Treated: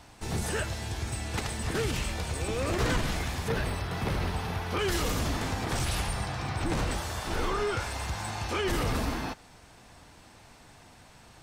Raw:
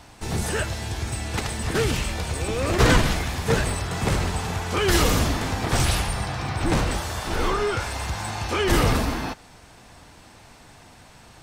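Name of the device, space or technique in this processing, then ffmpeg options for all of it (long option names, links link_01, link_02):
clipper into limiter: -filter_complex "[0:a]asoftclip=type=hard:threshold=-9.5dB,alimiter=limit=-15dB:level=0:latency=1:release=51,asettb=1/sr,asplit=3[link_01][link_02][link_03];[link_01]atrim=end=3.484[link_04];[link_02]atrim=start=3.48:end=4.79,asetpts=PTS-STARTPTS,afade=type=in:duration=0.004:curve=qsin,afade=type=out:start_time=1.306:duration=0.004:curve=qsin,equalizer=frequency=7500:width_type=o:width=0.55:gain=-12.5[link_05];[link_03]atrim=start=4.786[link_06];[link_04][link_05]acrossfade=duration=0.004:curve1=hsin:curve2=qsin[link_07];[link_07][link_06]acrossfade=duration=0.004:curve1=qsin:curve2=hsin,volume=-5dB"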